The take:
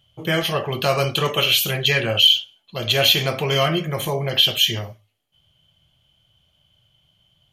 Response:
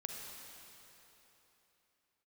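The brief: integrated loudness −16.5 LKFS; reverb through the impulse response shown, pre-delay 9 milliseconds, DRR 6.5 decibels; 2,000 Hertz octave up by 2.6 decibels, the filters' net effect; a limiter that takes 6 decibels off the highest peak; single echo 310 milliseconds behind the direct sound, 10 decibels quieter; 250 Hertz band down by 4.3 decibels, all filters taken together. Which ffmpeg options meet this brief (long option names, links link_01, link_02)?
-filter_complex "[0:a]equalizer=frequency=250:width_type=o:gain=-9,equalizer=frequency=2000:width_type=o:gain=3.5,alimiter=limit=-8.5dB:level=0:latency=1,aecho=1:1:310:0.316,asplit=2[link_01][link_02];[1:a]atrim=start_sample=2205,adelay=9[link_03];[link_02][link_03]afir=irnorm=-1:irlink=0,volume=-5.5dB[link_04];[link_01][link_04]amix=inputs=2:normalize=0,volume=2dB"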